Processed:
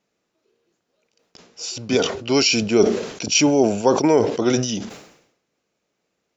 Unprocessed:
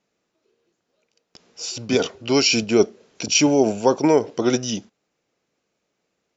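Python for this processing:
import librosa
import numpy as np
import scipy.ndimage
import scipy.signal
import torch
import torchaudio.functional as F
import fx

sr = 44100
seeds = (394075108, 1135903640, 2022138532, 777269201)

y = fx.sustainer(x, sr, db_per_s=77.0)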